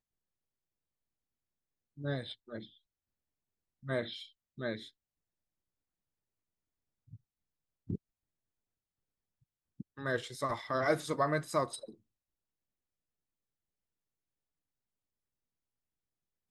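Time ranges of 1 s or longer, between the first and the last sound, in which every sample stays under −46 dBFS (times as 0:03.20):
0:02.65–0:03.85
0:04.88–0:07.13
0:07.96–0:09.80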